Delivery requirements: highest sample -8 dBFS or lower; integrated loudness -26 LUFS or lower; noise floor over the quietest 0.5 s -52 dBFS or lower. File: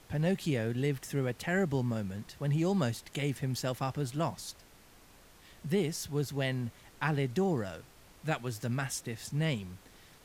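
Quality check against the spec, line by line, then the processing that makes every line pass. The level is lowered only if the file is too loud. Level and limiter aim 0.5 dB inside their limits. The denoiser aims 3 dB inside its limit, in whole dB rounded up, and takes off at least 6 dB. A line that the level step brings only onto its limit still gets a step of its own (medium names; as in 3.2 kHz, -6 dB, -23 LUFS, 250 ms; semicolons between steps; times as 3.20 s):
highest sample -15.5 dBFS: pass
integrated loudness -33.5 LUFS: pass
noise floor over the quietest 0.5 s -58 dBFS: pass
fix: none needed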